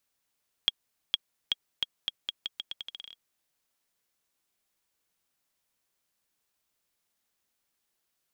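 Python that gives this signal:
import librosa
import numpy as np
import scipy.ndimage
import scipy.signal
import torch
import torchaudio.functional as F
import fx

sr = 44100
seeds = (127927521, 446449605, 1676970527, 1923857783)

y = fx.bouncing_ball(sr, first_gap_s=0.46, ratio=0.82, hz=3290.0, decay_ms=28.0, level_db=-9.5)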